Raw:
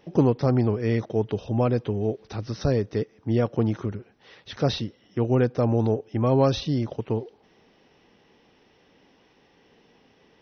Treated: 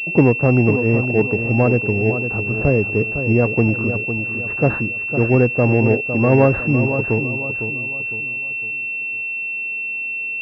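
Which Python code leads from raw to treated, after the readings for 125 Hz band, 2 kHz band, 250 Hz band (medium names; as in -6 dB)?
+7.0 dB, +24.0 dB, +7.0 dB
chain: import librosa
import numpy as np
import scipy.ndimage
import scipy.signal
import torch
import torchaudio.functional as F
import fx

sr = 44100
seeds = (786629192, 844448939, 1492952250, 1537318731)

y = fx.echo_feedback(x, sr, ms=506, feedback_pct=39, wet_db=-9)
y = fx.pwm(y, sr, carrier_hz=2700.0)
y = y * 10.0 ** (6.5 / 20.0)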